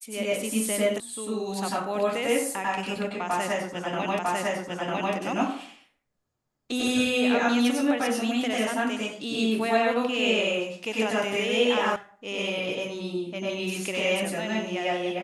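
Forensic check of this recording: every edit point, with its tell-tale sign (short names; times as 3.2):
1 sound cut off
4.19 repeat of the last 0.95 s
11.96 sound cut off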